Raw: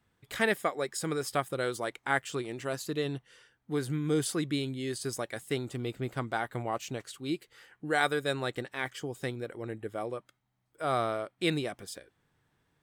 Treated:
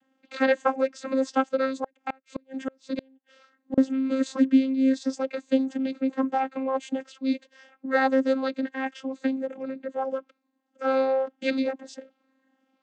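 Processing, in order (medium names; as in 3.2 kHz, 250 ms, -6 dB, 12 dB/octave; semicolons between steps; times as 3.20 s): drifting ripple filter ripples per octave 1.5, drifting +1.6 Hz, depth 15 dB; vocoder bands 16, saw 265 Hz; 1.69–3.78 s: inverted gate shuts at -23 dBFS, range -35 dB; trim +6 dB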